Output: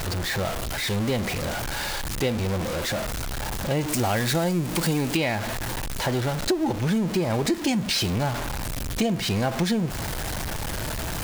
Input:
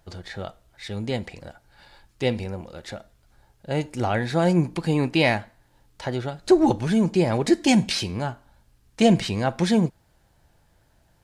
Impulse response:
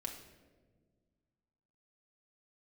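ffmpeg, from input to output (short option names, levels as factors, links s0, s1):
-filter_complex "[0:a]aeval=exprs='val(0)+0.5*0.0668*sgn(val(0))':c=same,asettb=1/sr,asplit=3[s0][s1][s2];[s0]atrim=end=3.884[s3];[s1]atrim=start=3.88:end=5.17,asetpts=PTS-STARTPTS,afade=t=in:d=0.004:c=qsin,afade=t=out:st=1.286:d=0.004:c=qsin,highshelf=f=4400:g=9[s4];[s2]atrim=start=5.166[s5];[s3][s4]acrossfade=d=0.004:c1=hsin:c2=qsin[s6];[s6][s5]acrossfade=d=0.004:c1=qsin:c2=hsin,acompressor=threshold=0.1:ratio=12"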